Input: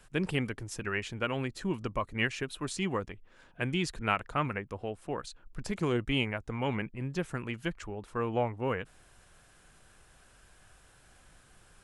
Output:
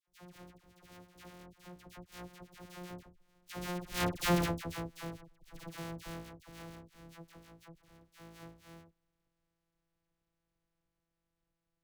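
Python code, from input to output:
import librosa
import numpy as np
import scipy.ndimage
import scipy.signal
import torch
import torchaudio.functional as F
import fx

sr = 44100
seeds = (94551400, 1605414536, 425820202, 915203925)

y = np.r_[np.sort(x[:len(x) // 256 * 256].reshape(-1, 256), axis=1).ravel(), x[len(x) // 256 * 256:]]
y = fx.doppler_pass(y, sr, speed_mps=11, closest_m=2.3, pass_at_s=4.35)
y = fx.dispersion(y, sr, late='lows', ms=78.0, hz=1200.0)
y = y * librosa.db_to_amplitude(3.0)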